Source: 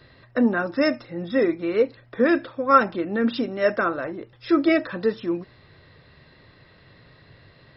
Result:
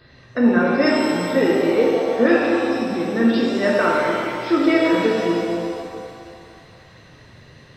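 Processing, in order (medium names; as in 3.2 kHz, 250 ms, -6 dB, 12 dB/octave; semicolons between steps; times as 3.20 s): spectral selection erased 2.53–2.93 s, 310–4600 Hz; pitch-shifted reverb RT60 2.3 s, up +7 st, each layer -8 dB, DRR -3.5 dB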